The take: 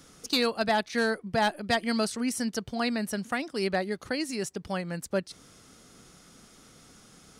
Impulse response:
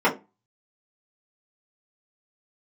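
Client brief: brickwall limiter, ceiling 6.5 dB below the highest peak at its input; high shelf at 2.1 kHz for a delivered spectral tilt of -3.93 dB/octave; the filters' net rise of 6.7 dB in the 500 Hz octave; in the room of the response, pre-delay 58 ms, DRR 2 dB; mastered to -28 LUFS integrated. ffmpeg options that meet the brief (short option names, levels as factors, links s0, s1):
-filter_complex "[0:a]equalizer=f=500:t=o:g=8,highshelf=f=2100:g=5,alimiter=limit=0.141:level=0:latency=1,asplit=2[s0][s1];[1:a]atrim=start_sample=2205,adelay=58[s2];[s1][s2]afir=irnorm=-1:irlink=0,volume=0.0891[s3];[s0][s3]amix=inputs=2:normalize=0,volume=0.75"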